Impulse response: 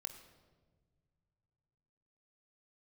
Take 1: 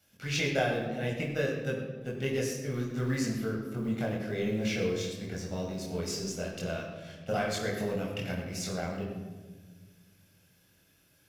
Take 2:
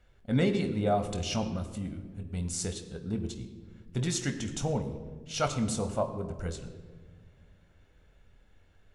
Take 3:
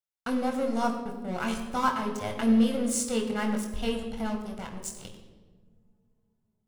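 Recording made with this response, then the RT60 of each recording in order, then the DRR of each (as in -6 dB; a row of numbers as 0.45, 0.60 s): 2; 1.4 s, not exponential, 1.4 s; -3.0, 6.5, 2.0 dB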